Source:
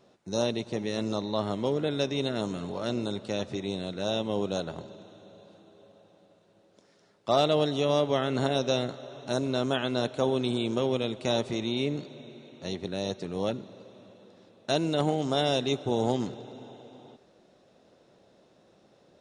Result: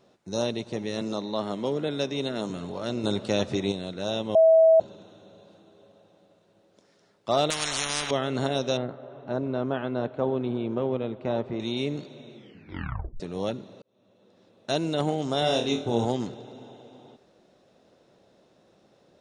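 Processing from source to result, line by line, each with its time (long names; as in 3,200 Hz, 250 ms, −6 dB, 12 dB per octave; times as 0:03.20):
0:01.01–0:02.50: high-pass filter 130 Hz 24 dB per octave
0:03.04–0:03.72: clip gain +6 dB
0:04.35–0:04.80: beep over 648 Hz −13 dBFS
0:07.50–0:08.11: every bin compressed towards the loudest bin 10 to 1
0:08.77–0:11.60: low-pass filter 1,600 Hz
0:12.34: tape stop 0.86 s
0:13.82–0:14.75: fade in linear
0:15.39–0:16.05: flutter between parallel walls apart 4.4 metres, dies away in 0.32 s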